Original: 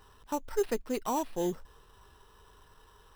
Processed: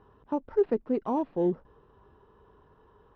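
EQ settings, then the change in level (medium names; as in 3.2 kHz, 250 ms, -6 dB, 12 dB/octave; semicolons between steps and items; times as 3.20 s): band-pass filter 270 Hz, Q 0.57; distance through air 180 m; +6.5 dB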